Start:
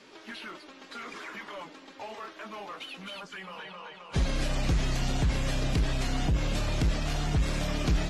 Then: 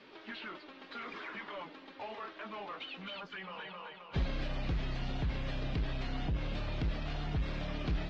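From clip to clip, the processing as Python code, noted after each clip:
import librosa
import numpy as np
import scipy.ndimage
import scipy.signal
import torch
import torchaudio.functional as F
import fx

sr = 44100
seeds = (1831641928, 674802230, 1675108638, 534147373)

y = fx.rider(x, sr, range_db=3, speed_s=0.5)
y = scipy.signal.sosfilt(scipy.signal.butter(4, 4200.0, 'lowpass', fs=sr, output='sos'), y)
y = y * librosa.db_to_amplitude(-5.5)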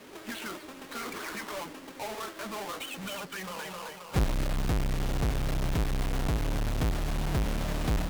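y = fx.halfwave_hold(x, sr)
y = fx.vibrato(y, sr, rate_hz=14.0, depth_cents=47.0)
y = y * librosa.db_to_amplitude(2.5)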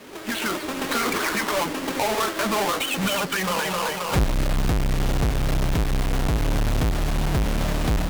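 y = fx.recorder_agc(x, sr, target_db=-23.0, rise_db_per_s=16.0, max_gain_db=30)
y = y * librosa.db_to_amplitude(5.5)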